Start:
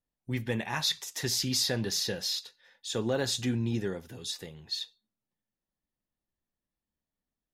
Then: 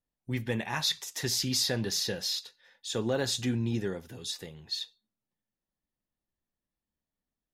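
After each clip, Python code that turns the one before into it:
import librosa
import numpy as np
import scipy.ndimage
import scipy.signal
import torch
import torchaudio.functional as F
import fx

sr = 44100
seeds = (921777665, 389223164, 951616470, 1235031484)

y = x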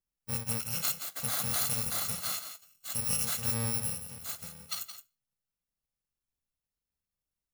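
y = fx.bit_reversed(x, sr, seeds[0], block=128)
y = y + 10.0 ** (-10.0 / 20.0) * np.pad(y, (int(170 * sr / 1000.0), 0))[:len(y)]
y = F.gain(torch.from_numpy(y), -2.0).numpy()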